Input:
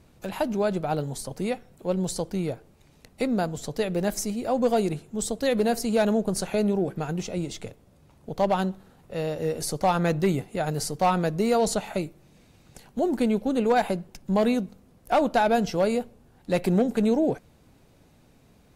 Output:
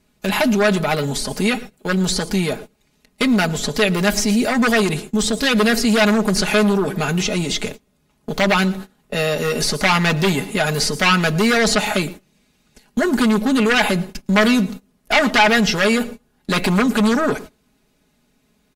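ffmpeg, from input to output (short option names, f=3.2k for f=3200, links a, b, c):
-filter_complex "[0:a]aeval=exprs='0.237*sin(PI/2*2*val(0)/0.237)':c=same,asplit=2[a][b];[b]aecho=0:1:114|228:0.0708|0.0248[c];[a][c]amix=inputs=2:normalize=0,acrossover=split=5000[d][e];[e]acompressor=threshold=-39dB:ratio=4:attack=1:release=60[f];[d][f]amix=inputs=2:normalize=0,agate=range=-20dB:threshold=-33dB:ratio=16:detection=peak,acrossover=split=1300[g][h];[g]alimiter=limit=-19dB:level=0:latency=1[i];[h]acontrast=81[j];[i][j]amix=inputs=2:normalize=0,equalizer=f=280:t=o:w=0.51:g=6,aecho=1:1:4.8:0.65,volume=1.5dB"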